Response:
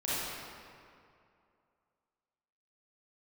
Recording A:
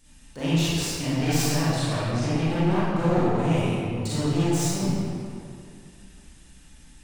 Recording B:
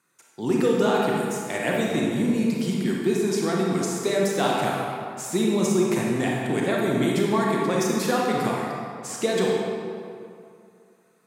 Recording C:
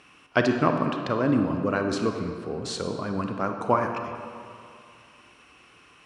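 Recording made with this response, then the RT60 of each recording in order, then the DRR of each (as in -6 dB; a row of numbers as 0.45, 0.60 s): A; 2.5, 2.4, 2.4 s; -11.0, -3.0, 4.5 dB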